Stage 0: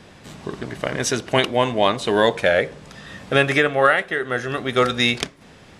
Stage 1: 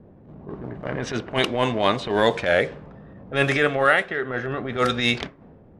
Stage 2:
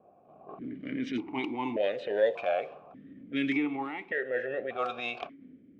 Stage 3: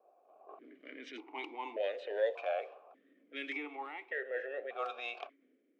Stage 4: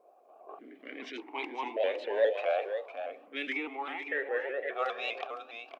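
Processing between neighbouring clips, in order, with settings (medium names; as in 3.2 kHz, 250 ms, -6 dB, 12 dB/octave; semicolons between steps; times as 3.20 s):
level-controlled noise filter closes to 450 Hz, open at -13 dBFS; transient shaper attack -12 dB, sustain +1 dB
compression, threshold -20 dBFS, peak gain reduction 8 dB; stepped vowel filter 1.7 Hz; trim +5.5 dB
high-pass 400 Hz 24 dB/octave; trim -6 dB
on a send: delay 509 ms -9 dB; on the sum: vibrato with a chosen wave saw up 4.9 Hz, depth 100 cents; trim +5.5 dB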